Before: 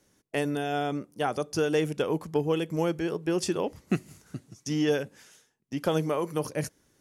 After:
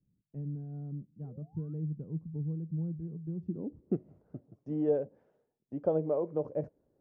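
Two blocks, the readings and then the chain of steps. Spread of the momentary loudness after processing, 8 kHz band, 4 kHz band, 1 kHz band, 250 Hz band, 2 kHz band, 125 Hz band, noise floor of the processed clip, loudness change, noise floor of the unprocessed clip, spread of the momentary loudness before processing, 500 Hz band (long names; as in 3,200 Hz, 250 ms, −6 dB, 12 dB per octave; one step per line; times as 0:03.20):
14 LU, below −40 dB, below −40 dB, −16.0 dB, −7.0 dB, below −30 dB, −2.0 dB, −80 dBFS, −6.5 dB, −69 dBFS, 10 LU, −6.5 dB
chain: sound drawn into the spectrogram rise, 0:01.24–0:01.74, 390–1,400 Hz −33 dBFS
low-pass filter sweep 160 Hz → 590 Hz, 0:03.40–0:04.07
level −7.5 dB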